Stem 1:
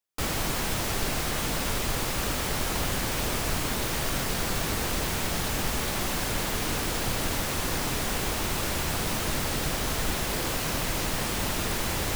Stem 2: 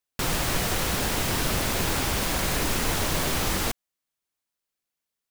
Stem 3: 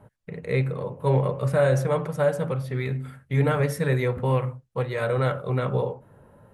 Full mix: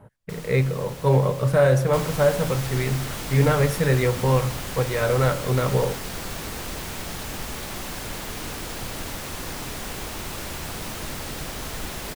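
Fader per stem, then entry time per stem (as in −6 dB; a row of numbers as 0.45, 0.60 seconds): −4.0, −15.5, +3.0 decibels; 1.75, 0.10, 0.00 seconds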